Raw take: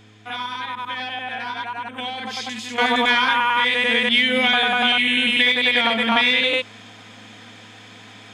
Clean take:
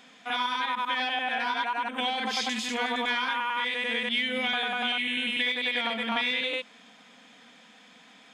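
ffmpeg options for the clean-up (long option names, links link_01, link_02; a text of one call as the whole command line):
ffmpeg -i in.wav -af "bandreject=frequency=106.3:width_type=h:width=4,bandreject=frequency=212.6:width_type=h:width=4,bandreject=frequency=318.9:width_type=h:width=4,bandreject=frequency=425.2:width_type=h:width=4,asetnsamples=nb_out_samples=441:pad=0,asendcmd='2.78 volume volume -10.5dB',volume=0dB" out.wav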